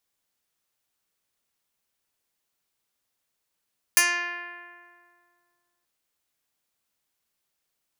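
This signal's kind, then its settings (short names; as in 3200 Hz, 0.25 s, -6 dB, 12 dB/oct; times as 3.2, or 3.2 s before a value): plucked string F4, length 1.88 s, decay 2.19 s, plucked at 0.09, medium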